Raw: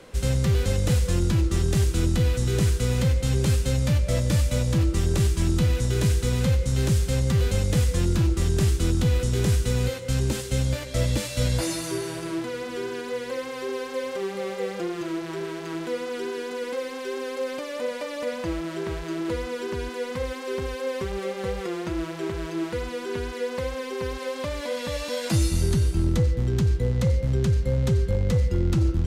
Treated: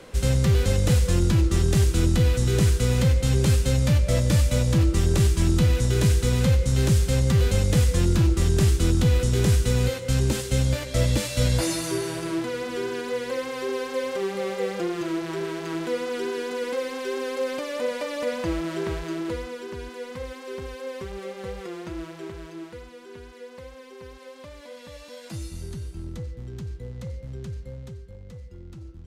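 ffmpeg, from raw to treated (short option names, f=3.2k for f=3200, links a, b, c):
-af "volume=2dB,afade=t=out:st=18.84:d=0.77:silence=0.421697,afade=t=out:st=21.98:d=0.93:silence=0.421697,afade=t=out:st=27.58:d=0.45:silence=0.446684"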